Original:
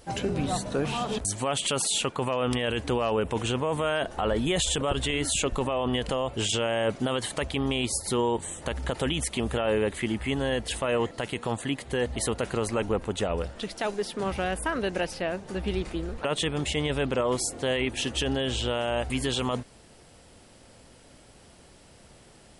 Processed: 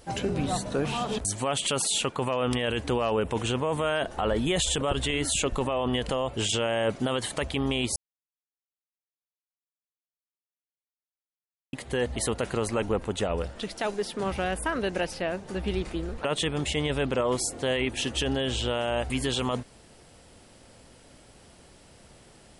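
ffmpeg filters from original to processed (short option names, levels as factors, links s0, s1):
-filter_complex "[0:a]asplit=3[s0][s1][s2];[s0]atrim=end=7.96,asetpts=PTS-STARTPTS,afade=t=out:st=7.956:d=0.004:c=hsin[s3];[s1]atrim=start=7.96:end=11.73,asetpts=PTS-STARTPTS,volume=0[s4];[s2]atrim=start=11.73,asetpts=PTS-STARTPTS,afade=t=in:d=0.004:c=hsin[s5];[s3][s4][s5]concat=n=3:v=0:a=1"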